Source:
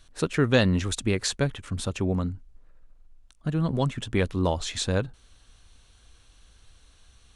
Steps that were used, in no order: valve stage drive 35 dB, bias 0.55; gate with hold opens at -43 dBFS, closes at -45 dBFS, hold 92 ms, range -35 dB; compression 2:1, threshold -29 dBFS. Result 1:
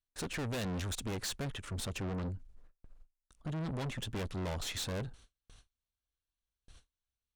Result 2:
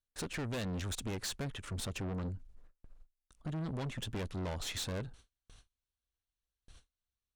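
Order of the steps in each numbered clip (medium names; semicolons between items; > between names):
gate with hold > valve stage > compression; compression > gate with hold > valve stage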